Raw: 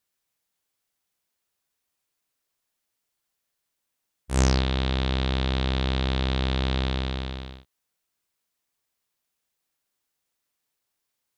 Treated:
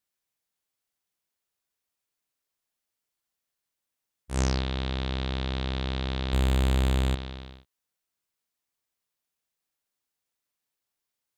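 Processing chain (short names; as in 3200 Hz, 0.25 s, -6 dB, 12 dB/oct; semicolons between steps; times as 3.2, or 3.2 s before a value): 6.33–7.15 sample leveller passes 3; gain -5 dB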